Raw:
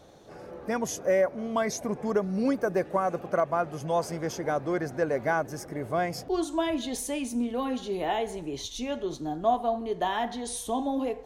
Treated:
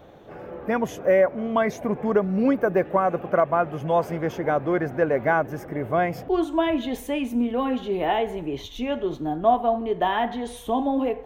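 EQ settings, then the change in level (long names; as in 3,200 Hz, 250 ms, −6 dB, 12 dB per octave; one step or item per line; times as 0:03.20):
flat-topped bell 6,800 Hz −15.5 dB
+5.5 dB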